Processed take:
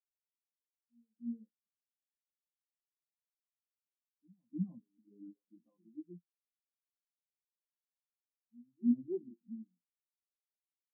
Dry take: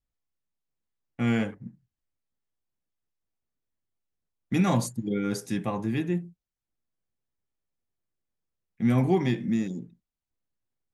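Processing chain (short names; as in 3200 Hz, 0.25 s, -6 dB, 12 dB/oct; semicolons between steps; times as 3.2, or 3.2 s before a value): median filter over 15 samples; HPF 210 Hz 12 dB/oct; high shelf 3300 Hz +9 dB; hard clip -20 dBFS, distortion -18 dB; air absorption 290 m; on a send: reverse echo 0.305 s -7 dB; on the sum: shoebox room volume 770 m³, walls furnished, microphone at 0.44 m; spectral expander 4:1; gain -4 dB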